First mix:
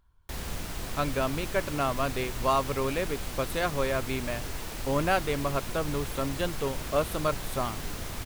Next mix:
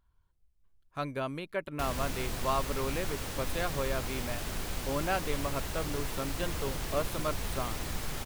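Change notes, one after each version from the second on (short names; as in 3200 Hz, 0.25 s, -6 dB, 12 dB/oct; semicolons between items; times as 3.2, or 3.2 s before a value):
speech -5.5 dB; background: entry +1.50 s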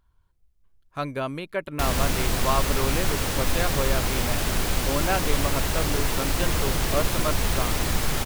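speech +5.5 dB; background +11.5 dB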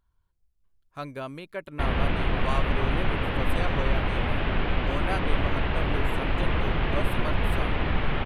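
speech -6.5 dB; background: add steep low-pass 3100 Hz 36 dB/oct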